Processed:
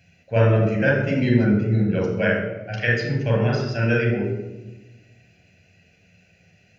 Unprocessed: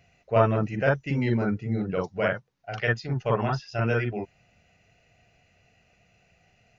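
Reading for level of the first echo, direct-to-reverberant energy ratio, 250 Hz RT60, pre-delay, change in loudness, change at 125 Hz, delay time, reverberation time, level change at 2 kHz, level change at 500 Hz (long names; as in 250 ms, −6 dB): no echo audible, 1.0 dB, 1.5 s, 11 ms, +5.5 dB, +7.0 dB, no echo audible, 1.1 s, +6.5 dB, +4.5 dB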